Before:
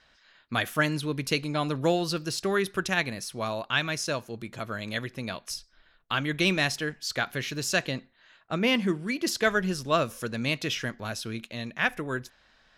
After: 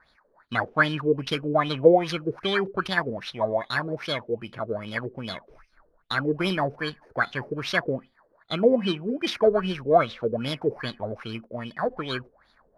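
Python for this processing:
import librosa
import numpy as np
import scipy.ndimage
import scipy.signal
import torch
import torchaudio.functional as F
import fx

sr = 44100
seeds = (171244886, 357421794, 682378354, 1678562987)

y = fx.bit_reversed(x, sr, seeds[0], block=16)
y = fx.filter_lfo_lowpass(y, sr, shape='sine', hz=2.5, low_hz=420.0, high_hz=3800.0, q=6.5)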